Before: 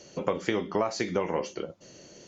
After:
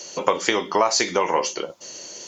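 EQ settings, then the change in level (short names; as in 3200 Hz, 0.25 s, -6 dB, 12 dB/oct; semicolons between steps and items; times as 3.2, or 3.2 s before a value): tone controls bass -12 dB, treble +3 dB; bell 970 Hz +6.5 dB 0.49 oct; high shelf 2800 Hz +10 dB; +6.5 dB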